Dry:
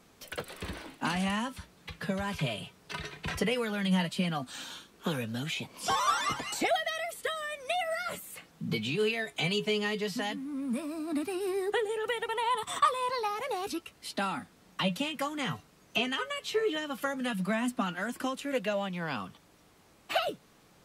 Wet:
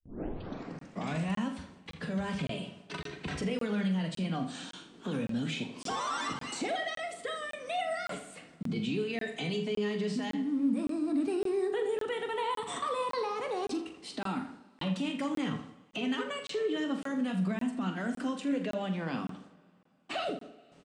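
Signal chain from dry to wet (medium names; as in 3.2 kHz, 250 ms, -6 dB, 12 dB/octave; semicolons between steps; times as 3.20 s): tape start-up on the opening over 1.34 s; gate with hold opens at -48 dBFS; Chebyshev low-pass 8.8 kHz, order 4; peaking EQ 260 Hz +11 dB 1.9 oct; hum notches 50/100/150/200 Hz; peak limiter -23 dBFS, peak gain reduction 11.5 dB; doubling 43 ms -10 dB; tape echo 81 ms, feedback 49%, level -9.5 dB, low-pass 3.3 kHz; two-slope reverb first 0.43 s, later 3 s, from -17 dB, DRR 13 dB; crackling interface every 0.56 s, samples 1024, zero, from 0.79 s; trim -3.5 dB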